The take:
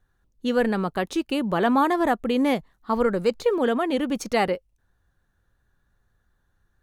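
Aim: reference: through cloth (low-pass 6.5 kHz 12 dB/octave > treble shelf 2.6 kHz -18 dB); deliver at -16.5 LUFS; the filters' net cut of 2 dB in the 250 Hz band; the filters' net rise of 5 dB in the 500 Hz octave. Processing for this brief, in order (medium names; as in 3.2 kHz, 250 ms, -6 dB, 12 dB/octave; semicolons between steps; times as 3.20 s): low-pass 6.5 kHz 12 dB/octave; peaking EQ 250 Hz -4.5 dB; peaking EQ 500 Hz +7.5 dB; treble shelf 2.6 kHz -18 dB; trim +5.5 dB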